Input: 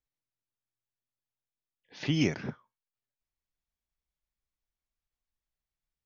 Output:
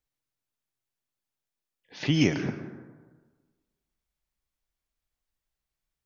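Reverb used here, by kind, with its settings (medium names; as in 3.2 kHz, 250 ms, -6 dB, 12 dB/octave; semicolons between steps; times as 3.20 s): plate-style reverb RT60 1.4 s, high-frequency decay 0.4×, pre-delay 105 ms, DRR 10 dB; trim +4 dB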